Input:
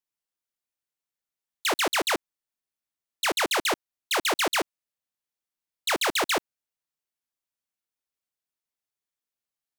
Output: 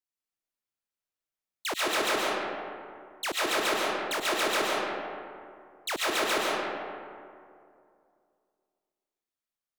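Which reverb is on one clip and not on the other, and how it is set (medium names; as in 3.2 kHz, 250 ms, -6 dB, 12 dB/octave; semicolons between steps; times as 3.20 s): algorithmic reverb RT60 2.4 s, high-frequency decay 0.45×, pre-delay 80 ms, DRR -4.5 dB; trim -7 dB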